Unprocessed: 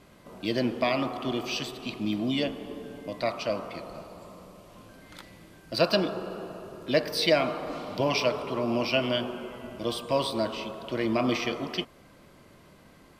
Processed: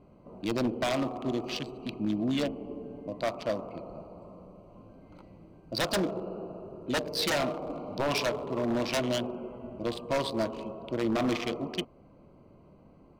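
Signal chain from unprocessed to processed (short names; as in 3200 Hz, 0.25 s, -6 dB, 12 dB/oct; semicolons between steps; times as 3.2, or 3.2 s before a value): Wiener smoothing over 25 samples; wavefolder -21.5 dBFS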